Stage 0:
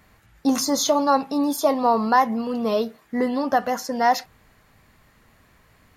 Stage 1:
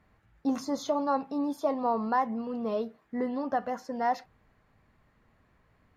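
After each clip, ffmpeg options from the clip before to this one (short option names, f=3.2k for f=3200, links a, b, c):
-af "lowpass=f=1.5k:p=1,volume=-8dB"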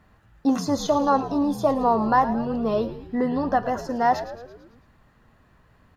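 -filter_complex "[0:a]equalizer=f=450:t=o:w=1.4:g=-2,bandreject=f=2.2k:w=7.3,asplit=7[a][b][c][d][e][f][g];[b]adelay=111,afreqshift=-82,volume=-13dB[h];[c]adelay=222,afreqshift=-164,volume=-17.9dB[i];[d]adelay=333,afreqshift=-246,volume=-22.8dB[j];[e]adelay=444,afreqshift=-328,volume=-27.6dB[k];[f]adelay=555,afreqshift=-410,volume=-32.5dB[l];[g]adelay=666,afreqshift=-492,volume=-37.4dB[m];[a][h][i][j][k][l][m]amix=inputs=7:normalize=0,volume=8.5dB"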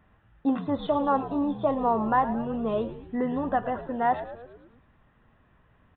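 -af "aresample=8000,aresample=44100,volume=-4dB"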